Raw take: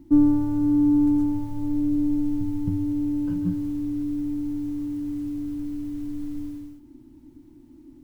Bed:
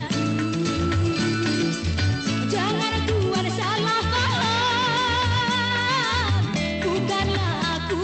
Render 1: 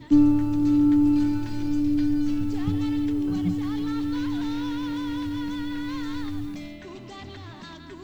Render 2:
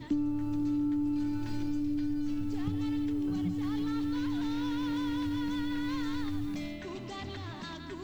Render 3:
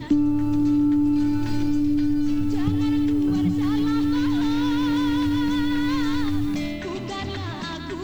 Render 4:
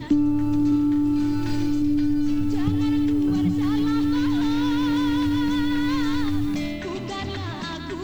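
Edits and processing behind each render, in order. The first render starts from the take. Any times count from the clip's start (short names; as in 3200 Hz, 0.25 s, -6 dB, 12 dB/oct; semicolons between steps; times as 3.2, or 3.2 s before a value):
add bed -18 dB
compressor 6:1, threshold -29 dBFS, peak gain reduction 15 dB
gain +10.5 dB
0.68–1.82 flutter echo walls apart 6.6 m, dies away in 0.41 s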